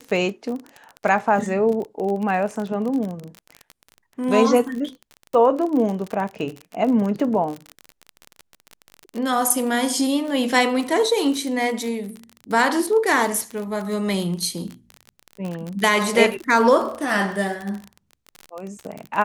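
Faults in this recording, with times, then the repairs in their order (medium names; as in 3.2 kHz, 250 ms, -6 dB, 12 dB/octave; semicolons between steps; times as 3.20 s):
crackle 31 per s -26 dBFS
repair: de-click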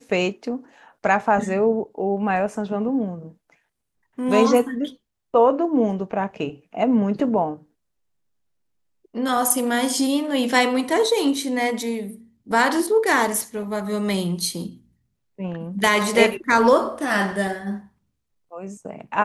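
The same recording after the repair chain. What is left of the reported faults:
nothing left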